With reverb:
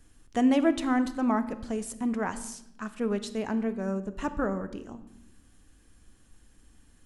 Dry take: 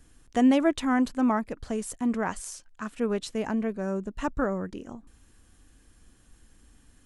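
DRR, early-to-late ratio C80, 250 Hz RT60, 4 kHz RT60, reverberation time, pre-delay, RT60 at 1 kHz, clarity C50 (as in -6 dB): 11.0 dB, 15.5 dB, 1.4 s, 0.70 s, 0.85 s, 9 ms, 0.75 s, 13.5 dB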